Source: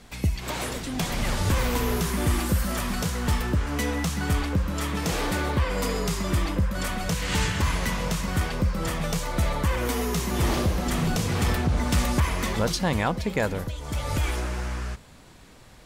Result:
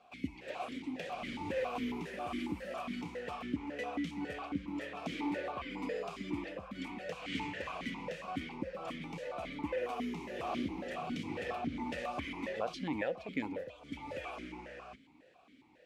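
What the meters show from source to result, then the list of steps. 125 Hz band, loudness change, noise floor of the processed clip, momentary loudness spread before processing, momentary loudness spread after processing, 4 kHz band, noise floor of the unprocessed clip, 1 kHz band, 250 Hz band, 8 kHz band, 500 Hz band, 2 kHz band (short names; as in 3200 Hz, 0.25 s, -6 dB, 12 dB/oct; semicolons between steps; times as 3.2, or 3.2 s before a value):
-23.5 dB, -13.5 dB, -62 dBFS, 5 LU, 7 LU, -15.5 dB, -49 dBFS, -10.5 dB, -10.0 dB, -27.5 dB, -9.0 dB, -12.5 dB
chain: vowel sequencer 7.3 Hz; gain +1 dB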